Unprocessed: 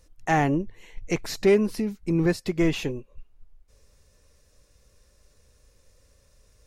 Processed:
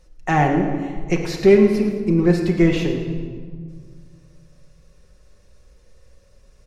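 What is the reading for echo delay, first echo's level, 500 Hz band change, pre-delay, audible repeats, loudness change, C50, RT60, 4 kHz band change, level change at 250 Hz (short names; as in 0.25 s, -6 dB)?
0.111 s, -12.5 dB, +7.5 dB, 5 ms, 2, +6.5 dB, 5.0 dB, 1.8 s, +2.5 dB, +7.5 dB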